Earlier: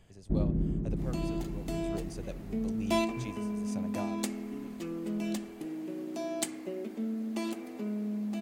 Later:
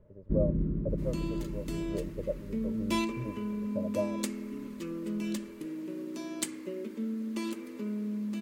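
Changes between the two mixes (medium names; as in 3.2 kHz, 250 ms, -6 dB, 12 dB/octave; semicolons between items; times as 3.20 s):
speech: add resonant low-pass 620 Hz, resonance Q 6.6; master: add Butterworth band-stop 730 Hz, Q 2.5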